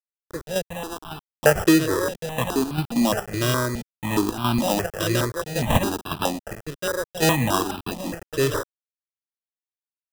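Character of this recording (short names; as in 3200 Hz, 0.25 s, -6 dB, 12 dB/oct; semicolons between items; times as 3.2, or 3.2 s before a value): aliases and images of a low sample rate 2200 Hz, jitter 0%; chopped level 1.8 Hz, depth 60%, duty 75%; a quantiser's noise floor 6-bit, dither none; notches that jump at a steady rate 4.8 Hz 220–1900 Hz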